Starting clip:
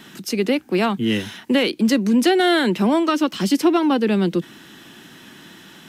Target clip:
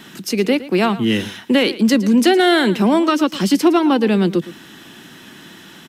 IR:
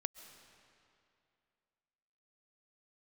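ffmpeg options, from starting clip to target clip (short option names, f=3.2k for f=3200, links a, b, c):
-af "aecho=1:1:113:0.15,volume=3dB"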